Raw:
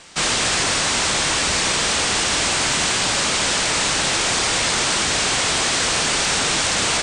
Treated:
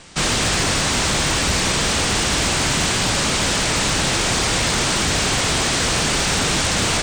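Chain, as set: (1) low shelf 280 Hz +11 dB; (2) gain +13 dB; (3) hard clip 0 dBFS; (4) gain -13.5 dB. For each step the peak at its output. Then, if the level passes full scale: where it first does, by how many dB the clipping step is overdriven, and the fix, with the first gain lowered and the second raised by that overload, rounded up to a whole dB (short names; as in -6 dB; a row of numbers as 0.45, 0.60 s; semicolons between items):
-7.5, +5.5, 0.0, -13.5 dBFS; step 2, 5.5 dB; step 2 +7 dB, step 4 -7.5 dB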